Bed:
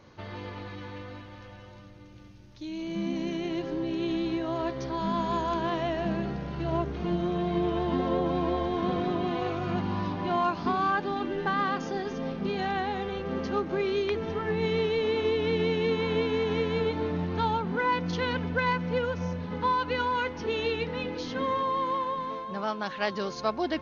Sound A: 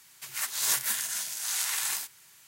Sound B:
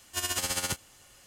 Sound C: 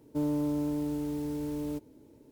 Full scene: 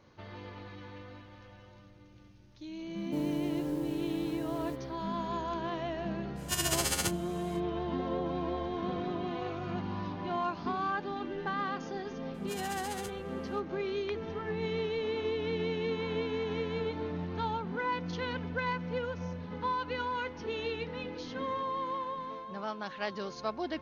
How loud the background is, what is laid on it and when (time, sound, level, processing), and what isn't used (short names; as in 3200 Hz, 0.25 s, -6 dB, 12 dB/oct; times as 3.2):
bed -6.5 dB
2.97 add C -4 dB
6.35 add B -0.5 dB, fades 0.05 s
12.34 add B -14 dB
not used: A